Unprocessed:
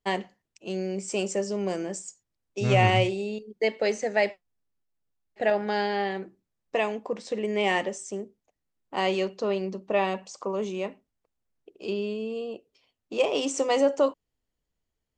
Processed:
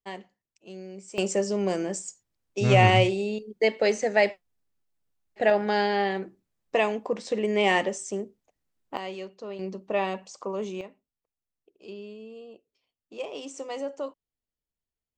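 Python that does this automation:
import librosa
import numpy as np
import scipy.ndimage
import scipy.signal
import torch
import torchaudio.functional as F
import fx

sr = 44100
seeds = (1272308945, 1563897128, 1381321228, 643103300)

y = fx.gain(x, sr, db=fx.steps((0.0, -10.5), (1.18, 2.5), (8.97, -10.5), (9.59, -2.0), (10.81, -11.0)))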